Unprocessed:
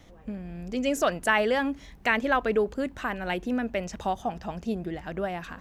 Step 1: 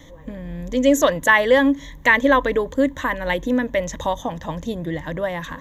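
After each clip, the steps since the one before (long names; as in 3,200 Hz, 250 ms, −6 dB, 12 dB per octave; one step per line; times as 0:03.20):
EQ curve with evenly spaced ripples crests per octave 1.1, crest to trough 13 dB
level +6 dB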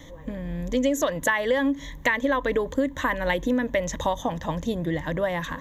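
downward compressor 12 to 1, threshold −19 dBFS, peak gain reduction 10.5 dB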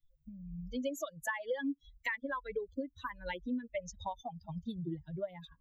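spectral dynamics exaggerated over time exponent 3
multiband upward and downward compressor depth 40%
level −8.5 dB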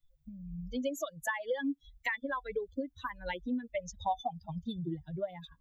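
hollow resonant body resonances 750/3,500 Hz, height 12 dB, ringing for 85 ms
level +2 dB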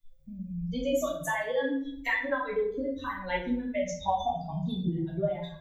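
rectangular room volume 98 cubic metres, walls mixed, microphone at 1.6 metres
level −1 dB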